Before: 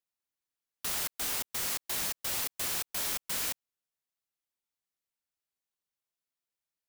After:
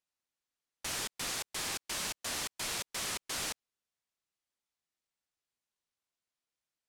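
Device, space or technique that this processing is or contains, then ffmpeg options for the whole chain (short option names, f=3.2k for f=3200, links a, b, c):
overflowing digital effects unit: -af "aeval=exprs='(mod(26.6*val(0)+1,2)-1)/26.6':c=same,lowpass=8.7k,volume=1.5dB"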